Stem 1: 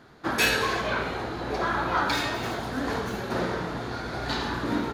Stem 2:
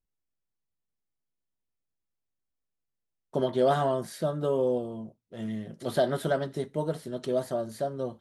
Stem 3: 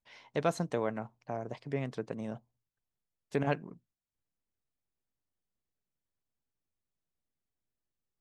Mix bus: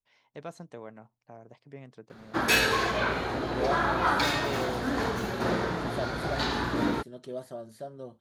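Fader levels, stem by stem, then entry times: 0.0 dB, -9.5 dB, -11.0 dB; 2.10 s, 0.00 s, 0.00 s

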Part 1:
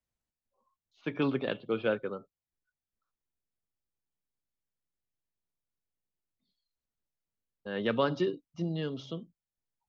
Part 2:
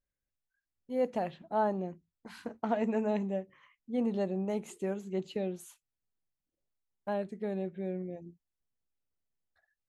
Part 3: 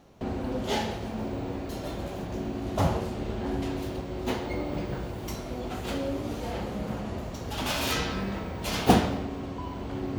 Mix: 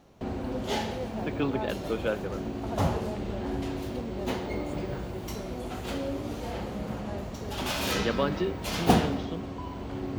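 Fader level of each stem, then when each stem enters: 0.0 dB, -7.5 dB, -1.5 dB; 0.20 s, 0.00 s, 0.00 s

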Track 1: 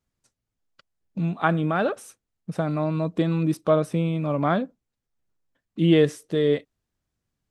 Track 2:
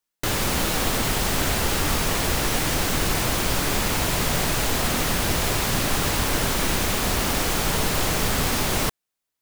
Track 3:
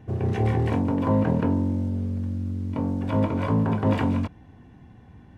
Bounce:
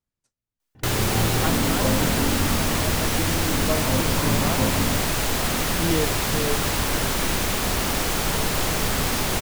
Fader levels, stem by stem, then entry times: -7.5 dB, -0.5 dB, -2.5 dB; 0.00 s, 0.60 s, 0.75 s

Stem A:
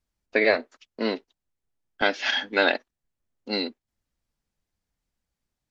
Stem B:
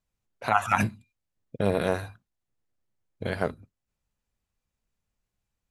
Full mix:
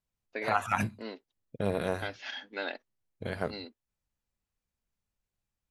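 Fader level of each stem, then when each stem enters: -15.0 dB, -5.5 dB; 0.00 s, 0.00 s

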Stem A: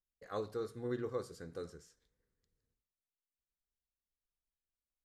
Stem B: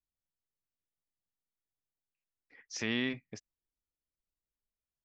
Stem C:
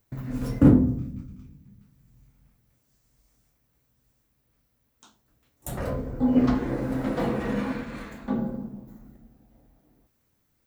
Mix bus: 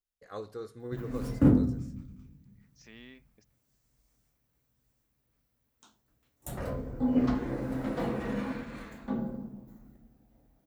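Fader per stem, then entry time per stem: -1.0 dB, -18.5 dB, -5.5 dB; 0.00 s, 0.05 s, 0.80 s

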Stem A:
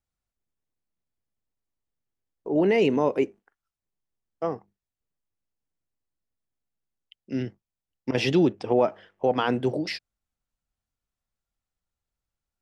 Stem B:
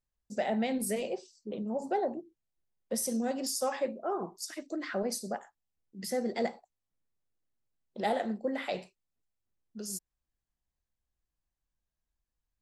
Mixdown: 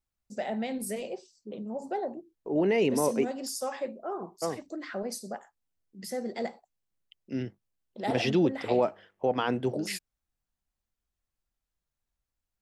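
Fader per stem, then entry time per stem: -4.0 dB, -2.0 dB; 0.00 s, 0.00 s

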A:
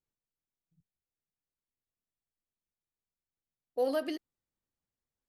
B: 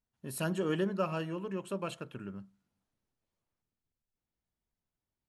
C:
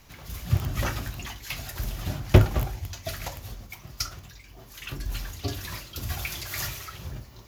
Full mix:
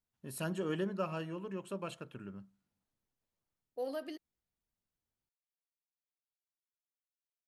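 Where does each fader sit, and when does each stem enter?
-8.5 dB, -4.0 dB, mute; 0.00 s, 0.00 s, mute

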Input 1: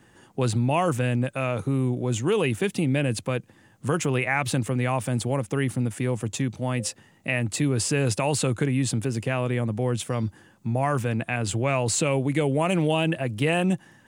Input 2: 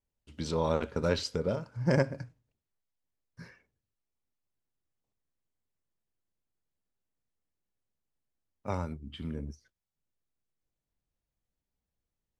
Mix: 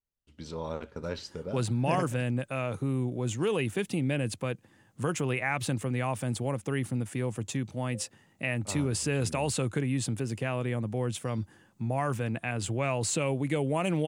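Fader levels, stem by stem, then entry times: -5.5 dB, -7.0 dB; 1.15 s, 0.00 s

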